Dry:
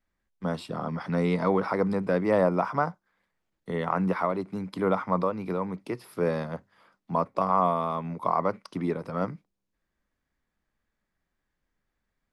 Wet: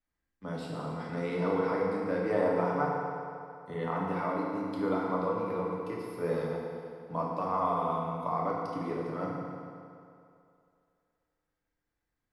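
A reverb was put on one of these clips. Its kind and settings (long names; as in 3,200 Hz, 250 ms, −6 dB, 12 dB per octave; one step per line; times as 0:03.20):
feedback delay network reverb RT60 2.5 s, low-frequency decay 0.85×, high-frequency decay 0.75×, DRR −4.5 dB
level −10 dB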